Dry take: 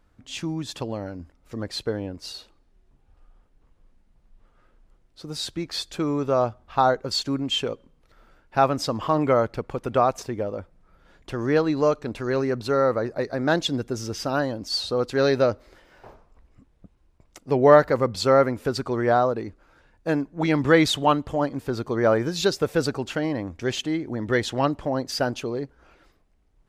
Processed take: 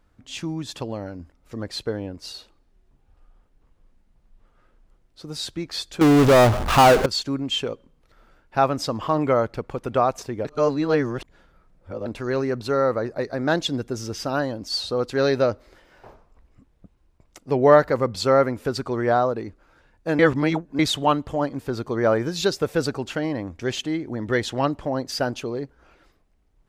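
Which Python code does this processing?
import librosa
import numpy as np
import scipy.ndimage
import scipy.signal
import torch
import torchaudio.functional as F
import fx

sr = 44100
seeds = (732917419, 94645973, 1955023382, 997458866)

y = fx.power_curve(x, sr, exponent=0.35, at=(6.01, 7.06))
y = fx.edit(y, sr, fx.reverse_span(start_s=10.45, length_s=1.61),
    fx.reverse_span(start_s=20.19, length_s=0.6), tone=tone)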